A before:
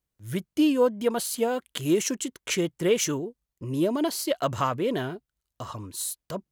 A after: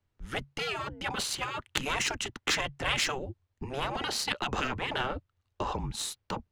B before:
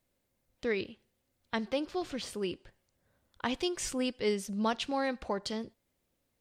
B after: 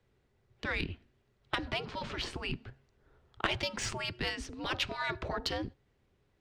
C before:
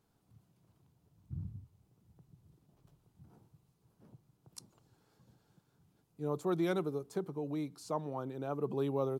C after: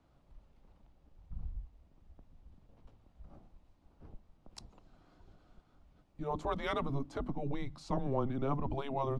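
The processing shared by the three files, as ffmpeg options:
ffmpeg -i in.wav -filter_complex "[0:a]acrossover=split=410[link_01][link_02];[link_01]aeval=exprs='0.0473*(abs(mod(val(0)/0.0473+3,4)-2)-1)':channel_layout=same[link_03];[link_03][link_02]amix=inputs=2:normalize=0,afftfilt=real='re*lt(hypot(re,im),0.0891)':imag='im*lt(hypot(re,im),0.0891)':win_size=1024:overlap=0.75,adynamicsmooth=sensitivity=2.5:basefreq=3600,afreqshift=-140,volume=8.5dB" out.wav

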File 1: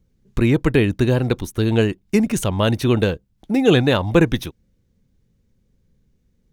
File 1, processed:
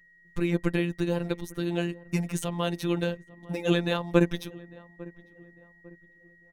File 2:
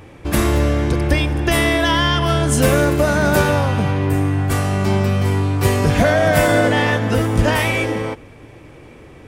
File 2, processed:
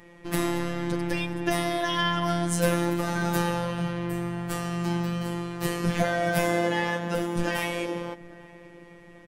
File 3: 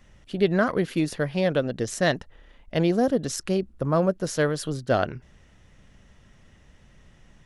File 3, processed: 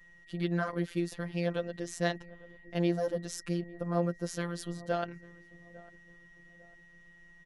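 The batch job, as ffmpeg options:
ffmpeg -i in.wav -filter_complex "[0:a]asplit=2[link_01][link_02];[link_02]adelay=850,lowpass=frequency=1000:poles=1,volume=-20dB,asplit=2[link_03][link_04];[link_04]adelay=850,lowpass=frequency=1000:poles=1,volume=0.43,asplit=2[link_05][link_06];[link_06]adelay=850,lowpass=frequency=1000:poles=1,volume=0.43[link_07];[link_01][link_03][link_05][link_07]amix=inputs=4:normalize=0,aeval=exprs='val(0)+0.00316*sin(2*PI*1900*n/s)':channel_layout=same,afftfilt=real='hypot(re,im)*cos(PI*b)':imag='0':win_size=1024:overlap=0.75,volume=-6dB" out.wav

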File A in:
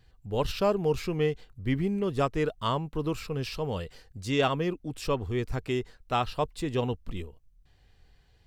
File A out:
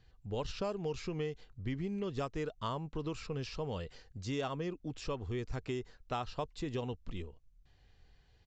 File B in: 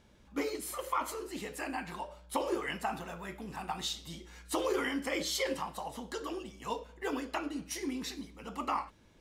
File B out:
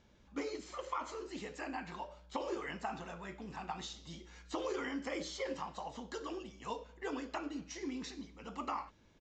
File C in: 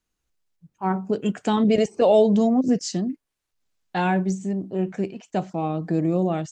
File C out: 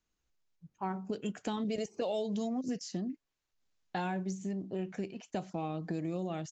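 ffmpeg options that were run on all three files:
ffmpeg -i in.wav -filter_complex "[0:a]acrossover=split=1900|4800[link_01][link_02][link_03];[link_01]acompressor=threshold=-31dB:ratio=4[link_04];[link_02]acompressor=threshold=-49dB:ratio=4[link_05];[link_03]acompressor=threshold=-45dB:ratio=4[link_06];[link_04][link_05][link_06]amix=inputs=3:normalize=0,aresample=16000,aresample=44100,volume=-3.5dB" out.wav

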